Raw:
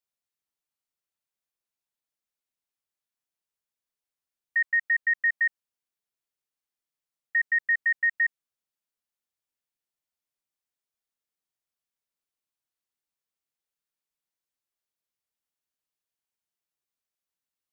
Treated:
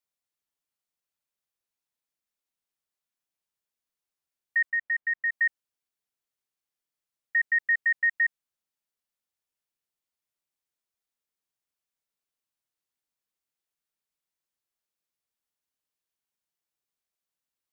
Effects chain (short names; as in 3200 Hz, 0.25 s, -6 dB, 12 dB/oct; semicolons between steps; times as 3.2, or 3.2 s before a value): 4.7–5.32 air absorption 410 m